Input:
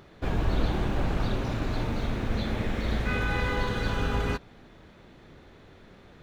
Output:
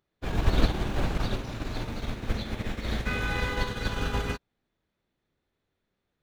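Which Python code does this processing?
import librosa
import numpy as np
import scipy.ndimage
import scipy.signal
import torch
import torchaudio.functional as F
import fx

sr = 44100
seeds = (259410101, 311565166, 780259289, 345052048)

y = fx.high_shelf(x, sr, hz=3000.0, db=7.5)
y = fx.upward_expand(y, sr, threshold_db=-44.0, expansion=2.5)
y = F.gain(torch.from_numpy(y), 5.5).numpy()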